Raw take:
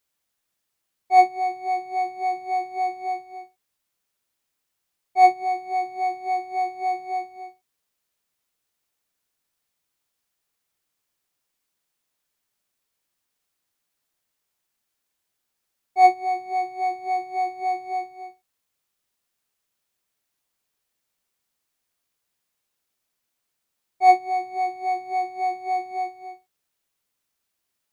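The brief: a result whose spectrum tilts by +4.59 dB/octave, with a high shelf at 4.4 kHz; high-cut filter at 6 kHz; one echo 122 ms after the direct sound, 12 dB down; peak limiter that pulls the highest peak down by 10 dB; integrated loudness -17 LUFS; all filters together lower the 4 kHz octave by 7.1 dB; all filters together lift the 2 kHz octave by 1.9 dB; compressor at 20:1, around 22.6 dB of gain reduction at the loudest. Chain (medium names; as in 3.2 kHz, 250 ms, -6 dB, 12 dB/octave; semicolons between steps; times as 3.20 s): low-pass 6 kHz; peaking EQ 2 kHz +4.5 dB; peaking EQ 4 kHz -5.5 dB; treble shelf 4.4 kHz -3.5 dB; compression 20:1, threshold -32 dBFS; peak limiter -34.5 dBFS; delay 122 ms -12 dB; trim +25 dB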